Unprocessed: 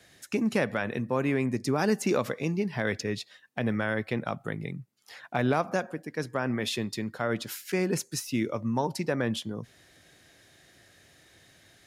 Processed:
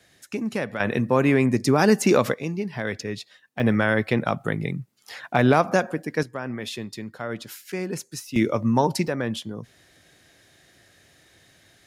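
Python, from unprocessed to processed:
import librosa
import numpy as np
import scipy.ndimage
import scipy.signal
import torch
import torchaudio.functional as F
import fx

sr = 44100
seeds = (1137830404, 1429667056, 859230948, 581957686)

y = fx.gain(x, sr, db=fx.steps((0.0, -1.0), (0.8, 8.0), (2.34, 0.5), (3.6, 8.0), (6.23, -2.0), (8.36, 8.0), (9.08, 1.5)))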